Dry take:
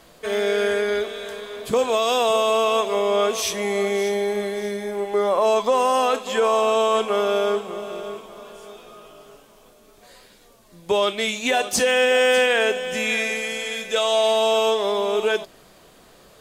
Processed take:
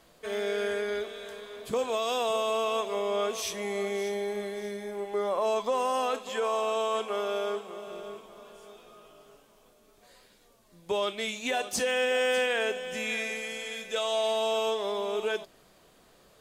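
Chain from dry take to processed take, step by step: 6.29–7.87 s: high-pass 250 Hz 6 dB/octave; trim -9 dB

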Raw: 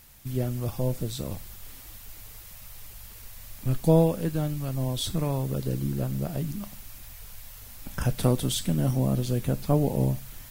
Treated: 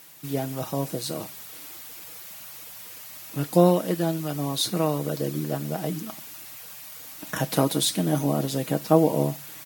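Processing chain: high-pass 240 Hz 12 dB/octave; comb 6.9 ms, depth 48%; speed mistake 44.1 kHz file played as 48 kHz; trim +5 dB

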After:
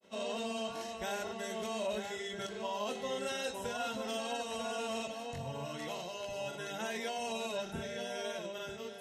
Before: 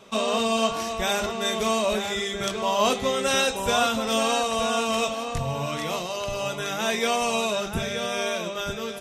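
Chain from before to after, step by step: peak limiter -16 dBFS, peak gain reduction 6.5 dB; granulator 117 ms, grains 20 per s, spray 26 ms, pitch spread up and down by 0 st; comb of notches 1.2 kHz; trim -9 dB

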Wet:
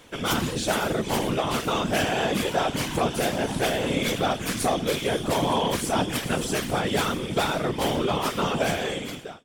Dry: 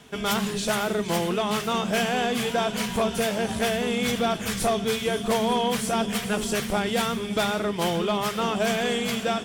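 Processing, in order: fade out at the end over 0.85 s; whisper effect

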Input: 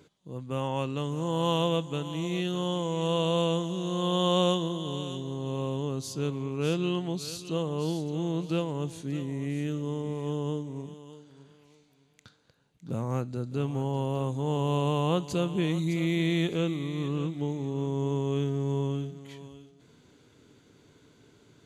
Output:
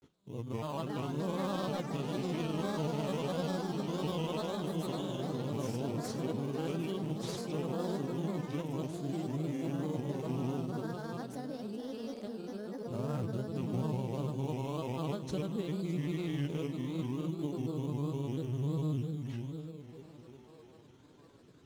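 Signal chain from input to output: on a send at -13 dB: reverberation RT60 0.75 s, pre-delay 3 ms; on the sum: compression, threshold -30 dBFS, peak gain reduction 10.5 dB; repeats whose band climbs or falls 614 ms, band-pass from 200 Hz, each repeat 0.7 oct, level -7.5 dB; in parallel at -6 dB: sample-rate reducer 3.3 kHz, jitter 0%; on the sum: ever faster or slower copies 519 ms, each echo +6 st, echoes 3, each echo -6 dB; granulator, spray 31 ms, pitch spread up and down by 3 st; trim -5 dB

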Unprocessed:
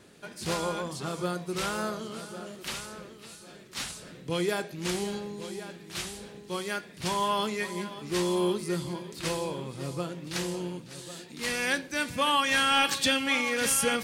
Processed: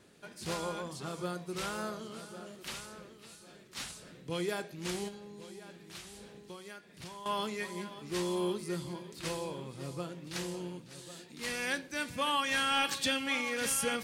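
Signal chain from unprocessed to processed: 5.08–7.26 s: compression 10:1, threshold -38 dBFS, peak gain reduction 14.5 dB; trim -6 dB

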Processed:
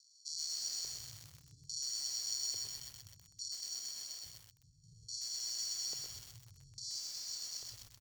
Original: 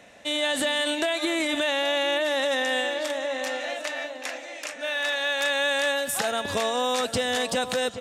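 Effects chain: comb 7.1 ms, depth 71%; sample-and-hold 35×; inverse Chebyshev band-stop 340–2600 Hz, stop band 50 dB; feedback delay 90 ms, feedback 51%, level -9 dB; compression 16:1, threshold -30 dBFS, peak gain reduction 7.5 dB; FFT filter 110 Hz 0 dB, 200 Hz -18 dB, 320 Hz -11 dB, 460 Hz -7 dB, 660 Hz -25 dB, 1.1 kHz -24 dB, 1.7 kHz -27 dB, 4.2 kHz +11 dB, 7.1 kHz +6 dB, 11 kHz -12 dB; LFO band-pass square 0.59 Hz 430–4400 Hz; treble shelf 2.7 kHz +2 dB; delay 109 ms -6.5 dB; bit-crushed delay 127 ms, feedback 80%, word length 8-bit, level -4 dB; trim -1.5 dB

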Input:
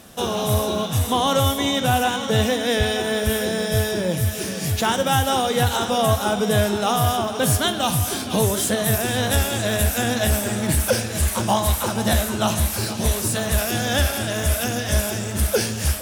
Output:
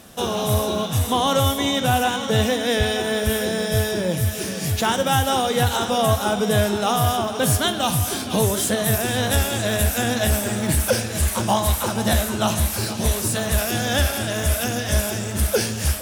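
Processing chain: 10.26–10.85 s: added noise violet -56 dBFS

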